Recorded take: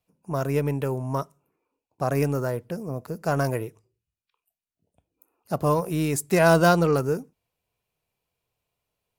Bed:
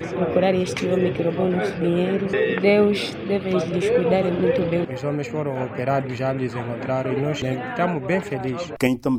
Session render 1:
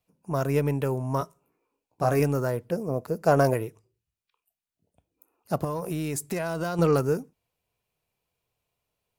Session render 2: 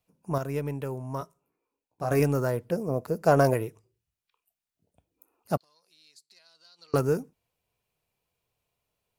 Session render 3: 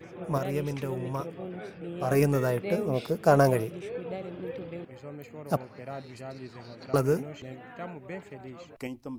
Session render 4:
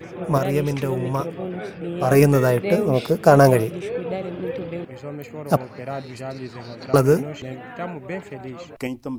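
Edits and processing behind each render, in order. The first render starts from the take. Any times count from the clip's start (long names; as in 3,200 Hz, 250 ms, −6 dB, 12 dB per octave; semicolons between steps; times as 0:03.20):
0:01.19–0:02.20: double-tracking delay 17 ms −4.5 dB; 0:02.71–0:03.54: dynamic equaliser 500 Hz, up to +7 dB, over −38 dBFS, Q 0.93; 0:05.64–0:06.79: downward compressor 12 to 1, threshold −25 dBFS
0:00.38–0:02.11: clip gain −6.5 dB; 0:05.57–0:06.94: resonant band-pass 4,300 Hz, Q 12
mix in bed −17.5 dB
level +9 dB; brickwall limiter −1 dBFS, peak gain reduction 2.5 dB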